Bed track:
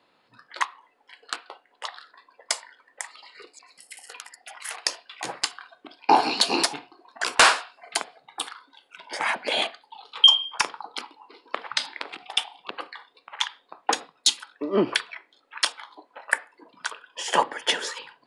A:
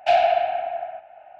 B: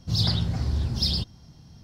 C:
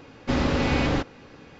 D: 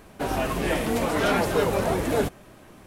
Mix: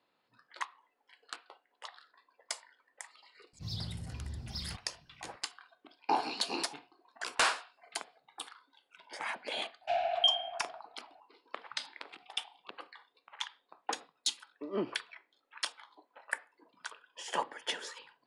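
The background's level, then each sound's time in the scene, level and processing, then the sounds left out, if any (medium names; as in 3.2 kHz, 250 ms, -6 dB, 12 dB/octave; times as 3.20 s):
bed track -12.5 dB
3.53 s: add B -16 dB
9.81 s: add A -14.5 dB
not used: C, D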